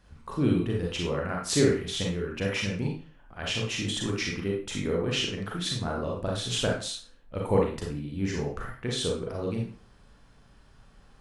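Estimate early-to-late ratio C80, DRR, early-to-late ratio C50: 8.5 dB, -1.5 dB, 2.5 dB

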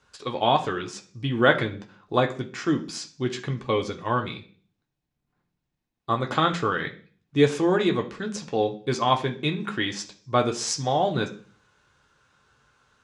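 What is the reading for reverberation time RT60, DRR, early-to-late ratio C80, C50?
0.40 s, 2.0 dB, 18.0 dB, 13.5 dB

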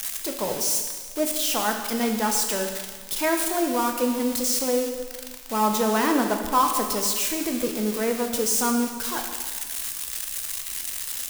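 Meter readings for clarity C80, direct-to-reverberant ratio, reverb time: 7.0 dB, 3.0 dB, 1.5 s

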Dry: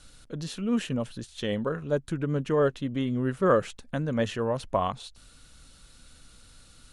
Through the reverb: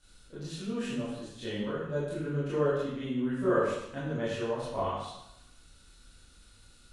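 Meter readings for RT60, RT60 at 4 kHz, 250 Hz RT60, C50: 0.85 s, 0.75 s, 0.80 s, -0.5 dB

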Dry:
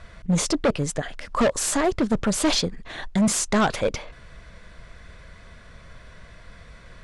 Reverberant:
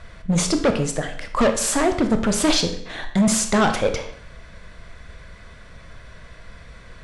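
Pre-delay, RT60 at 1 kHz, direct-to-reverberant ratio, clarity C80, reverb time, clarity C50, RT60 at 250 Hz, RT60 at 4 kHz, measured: 22 ms, 0.65 s, 6.0 dB, 12.0 dB, 0.65 s, 9.0 dB, 0.65 s, 0.60 s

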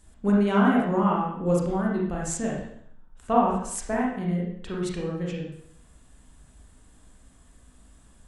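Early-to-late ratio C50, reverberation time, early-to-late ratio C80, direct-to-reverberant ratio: 1.0 dB, 0.65 s, 5.5 dB, -4.0 dB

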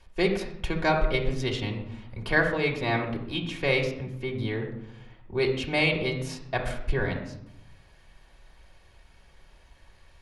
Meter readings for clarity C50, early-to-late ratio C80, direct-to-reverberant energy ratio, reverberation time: 7.0 dB, 9.5 dB, -1.5 dB, 0.80 s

